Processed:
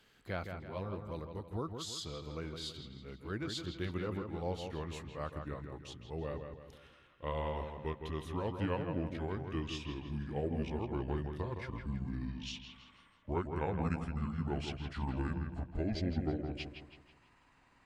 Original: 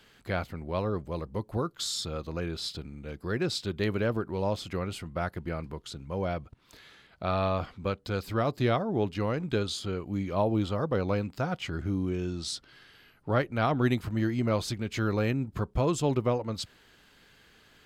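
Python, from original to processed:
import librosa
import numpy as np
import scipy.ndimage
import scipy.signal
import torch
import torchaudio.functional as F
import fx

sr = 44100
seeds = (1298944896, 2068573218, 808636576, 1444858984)

y = fx.pitch_glide(x, sr, semitones=-9.0, runs='starting unshifted')
y = fx.echo_wet_lowpass(y, sr, ms=163, feedback_pct=43, hz=3700.0, wet_db=-6.5)
y = y * librosa.db_to_amplitude(-8.0)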